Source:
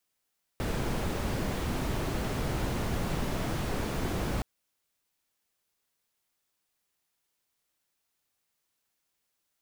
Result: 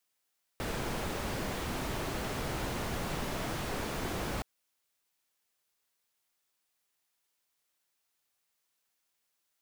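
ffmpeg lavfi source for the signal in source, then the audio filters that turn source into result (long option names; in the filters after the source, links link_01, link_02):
-f lavfi -i "anoisesrc=color=brown:amplitude=0.14:duration=3.82:sample_rate=44100:seed=1"
-af "lowshelf=frequency=360:gain=-7"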